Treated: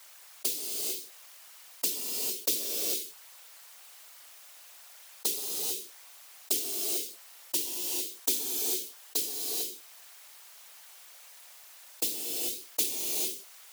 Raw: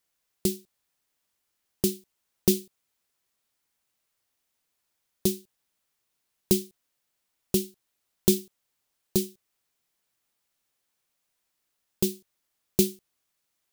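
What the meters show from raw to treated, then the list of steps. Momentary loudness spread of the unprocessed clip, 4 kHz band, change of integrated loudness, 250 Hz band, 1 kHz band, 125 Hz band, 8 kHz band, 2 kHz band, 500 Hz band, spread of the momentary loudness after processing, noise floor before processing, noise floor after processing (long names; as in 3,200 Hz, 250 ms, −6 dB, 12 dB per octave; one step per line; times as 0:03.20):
14 LU, +4.0 dB, −2.0 dB, −16.5 dB, +4.0 dB, below −25 dB, +4.0 dB, +5.0 dB, −11.0 dB, 21 LU, −79 dBFS, −52 dBFS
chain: high-pass filter 590 Hz 24 dB per octave
random phases in short frames
reverb whose tail is shaped and stops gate 470 ms rising, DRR 3 dB
envelope flattener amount 50%
level −2.5 dB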